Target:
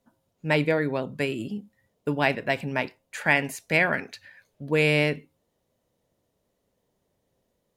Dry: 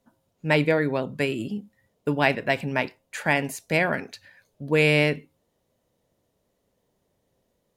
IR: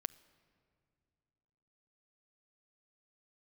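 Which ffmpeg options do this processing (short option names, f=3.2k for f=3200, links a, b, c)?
-filter_complex "[0:a]asettb=1/sr,asplit=3[a][b][c];[a]atrim=end=3.214[d];[b]atrim=start=3.21:end=4.71,asetpts=PTS-STARTPTS,afade=t=in:d=0.004:c=qsin,afade=t=out:st=1.496:d=0.004:c=qsin,equalizer=f=2k:t=o:w=1.4:g=5[e];[c]atrim=start=4.706[f];[d][e]acrossfade=d=0.004:c1=hsin:c2=qsin[g];[g][f]acrossfade=d=0.004:c1=qsin:c2=hsin,volume=-2dB"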